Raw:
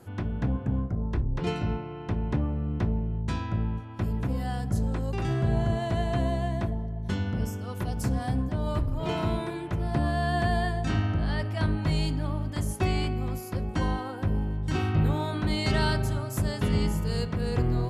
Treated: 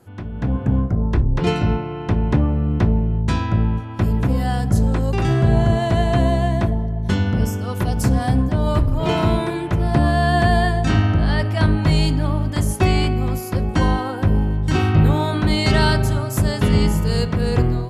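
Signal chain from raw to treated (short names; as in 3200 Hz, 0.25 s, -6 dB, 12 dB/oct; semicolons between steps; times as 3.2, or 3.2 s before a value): AGC gain up to 11.5 dB; gain -1 dB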